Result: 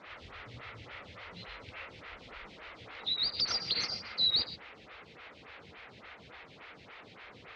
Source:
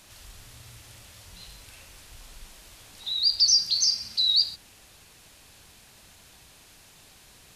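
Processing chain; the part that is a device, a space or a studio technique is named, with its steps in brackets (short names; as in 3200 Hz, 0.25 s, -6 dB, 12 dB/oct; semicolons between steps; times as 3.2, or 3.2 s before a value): 3.34–3.88 bell 2600 Hz +5.5 dB 1.6 oct; vibe pedal into a guitar amplifier (photocell phaser 3.5 Hz; tube stage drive 23 dB, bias 0.25; speaker cabinet 75–3600 Hz, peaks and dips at 480 Hz +6 dB, 1300 Hz +7 dB, 2100 Hz +8 dB); gain +7 dB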